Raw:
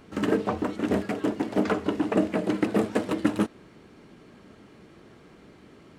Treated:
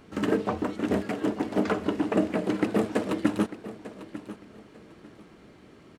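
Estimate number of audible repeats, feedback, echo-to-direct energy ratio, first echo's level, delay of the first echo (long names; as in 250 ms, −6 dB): 2, 25%, −14.0 dB, −14.5 dB, 897 ms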